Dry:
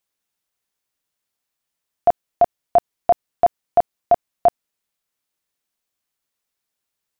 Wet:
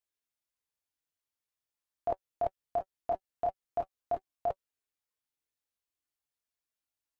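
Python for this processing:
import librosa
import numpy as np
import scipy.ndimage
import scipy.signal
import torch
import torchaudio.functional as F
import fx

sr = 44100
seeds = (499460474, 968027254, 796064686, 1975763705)

y = fx.notch_comb(x, sr, f0_hz=190.0)
y = fx.chorus_voices(y, sr, voices=6, hz=0.43, base_ms=22, depth_ms=1.9, mix_pct=45)
y = fx.level_steps(y, sr, step_db=13)
y = F.gain(torch.from_numpy(y), -2.5).numpy()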